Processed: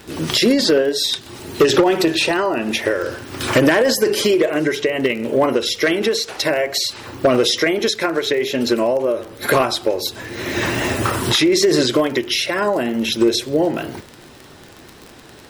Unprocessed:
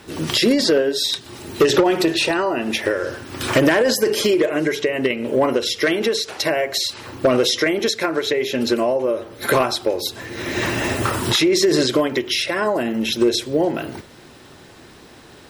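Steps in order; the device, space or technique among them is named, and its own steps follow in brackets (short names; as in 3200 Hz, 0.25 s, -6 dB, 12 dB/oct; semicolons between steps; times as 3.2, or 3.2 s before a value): vinyl LP (wow and flutter; crackle 33/s -26 dBFS; pink noise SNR 41 dB); gain +1.5 dB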